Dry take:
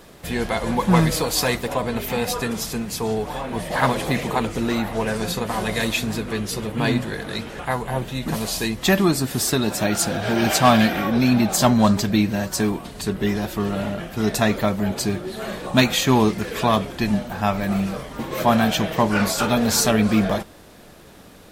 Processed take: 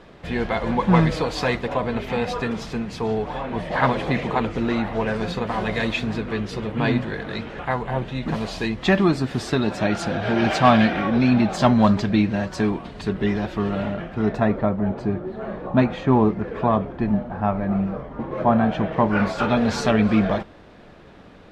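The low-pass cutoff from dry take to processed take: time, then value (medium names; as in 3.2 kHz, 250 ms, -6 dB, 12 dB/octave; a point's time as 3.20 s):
13.82 s 3.1 kHz
14.55 s 1.2 kHz
18.57 s 1.2 kHz
19.59 s 2.9 kHz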